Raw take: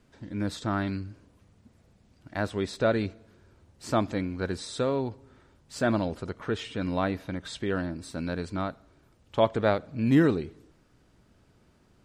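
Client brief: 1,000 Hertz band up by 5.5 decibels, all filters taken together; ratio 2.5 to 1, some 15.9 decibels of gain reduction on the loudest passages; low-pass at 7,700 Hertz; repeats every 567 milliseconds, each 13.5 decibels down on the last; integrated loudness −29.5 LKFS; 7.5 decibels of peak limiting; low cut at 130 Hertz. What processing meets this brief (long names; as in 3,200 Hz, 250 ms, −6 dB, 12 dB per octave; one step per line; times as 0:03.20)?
high-pass filter 130 Hz
low-pass filter 7,700 Hz
parametric band 1,000 Hz +7.5 dB
downward compressor 2.5 to 1, threshold −40 dBFS
brickwall limiter −27.5 dBFS
repeating echo 567 ms, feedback 21%, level −13.5 dB
level +12.5 dB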